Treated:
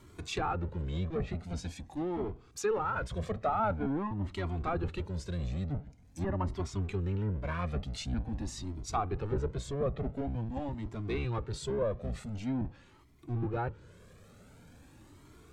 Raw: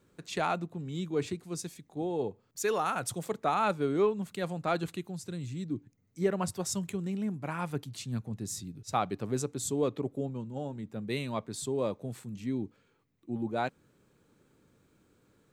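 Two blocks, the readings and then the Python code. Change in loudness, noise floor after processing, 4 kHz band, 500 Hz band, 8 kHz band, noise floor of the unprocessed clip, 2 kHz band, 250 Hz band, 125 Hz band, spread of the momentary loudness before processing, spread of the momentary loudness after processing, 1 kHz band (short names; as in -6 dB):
-1.5 dB, -58 dBFS, -3.0 dB, -3.0 dB, -8.5 dB, -70 dBFS, -3.0 dB, -2.5 dB, +3.5 dB, 10 LU, 7 LU, -2.0 dB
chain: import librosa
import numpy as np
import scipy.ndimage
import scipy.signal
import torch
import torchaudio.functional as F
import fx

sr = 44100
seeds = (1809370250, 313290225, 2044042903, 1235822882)

y = fx.octave_divider(x, sr, octaves=1, level_db=2.0)
y = fx.low_shelf(y, sr, hz=200.0, db=-4.5)
y = fx.power_curve(y, sr, exponent=0.7)
y = fx.env_lowpass_down(y, sr, base_hz=1400.0, full_db=-23.0)
y = fx.comb_cascade(y, sr, direction='rising', hz=0.46)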